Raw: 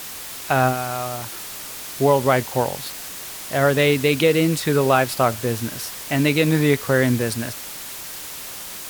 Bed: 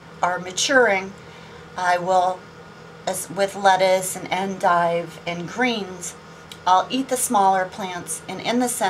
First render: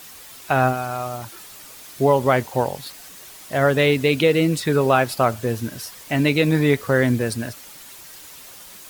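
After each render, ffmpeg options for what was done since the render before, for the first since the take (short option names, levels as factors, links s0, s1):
-af "afftdn=nr=9:nf=-34"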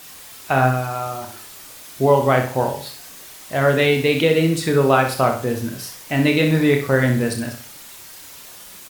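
-filter_complex "[0:a]asplit=2[s0][s1];[s1]adelay=30,volume=0.447[s2];[s0][s2]amix=inputs=2:normalize=0,aecho=1:1:63|126|189|252:0.398|0.143|0.0516|0.0186"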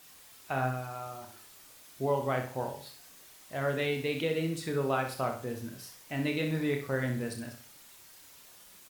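-af "volume=0.188"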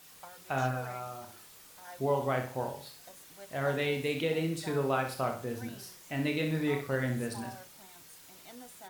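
-filter_complex "[1:a]volume=0.0335[s0];[0:a][s0]amix=inputs=2:normalize=0"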